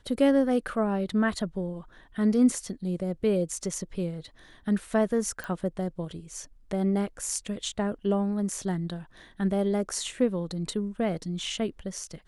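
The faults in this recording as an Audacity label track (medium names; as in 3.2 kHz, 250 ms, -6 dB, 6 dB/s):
5.440000	5.440000	pop -21 dBFS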